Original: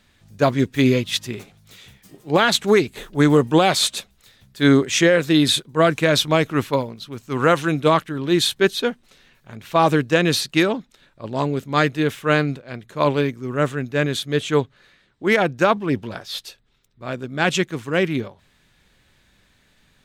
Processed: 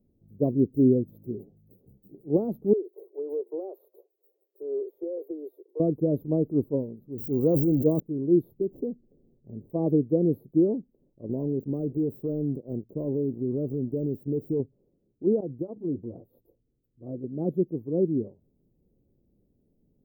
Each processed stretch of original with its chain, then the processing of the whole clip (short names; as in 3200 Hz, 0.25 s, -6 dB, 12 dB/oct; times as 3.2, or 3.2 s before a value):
2.73–5.8 steep high-pass 360 Hz 72 dB/oct + compressor 3:1, threshold -24 dBFS
7.18–8 zero-crossing step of -29.5 dBFS + high shelf 3200 Hz +7 dB + sustainer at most 41 dB/s
8.61–9.7 median filter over 25 samples + tilt shelf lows +4 dB + compressor, threshold -21 dBFS
11.29–14.6 sample leveller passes 2 + compressor, threshold -20 dBFS
15.4–17.24 compressor 12:1, threshold -20 dBFS + notch comb 200 Hz
whole clip: inverse Chebyshev band-stop 1600–8600 Hz, stop band 70 dB; low shelf 220 Hz -12 dB; gain +2.5 dB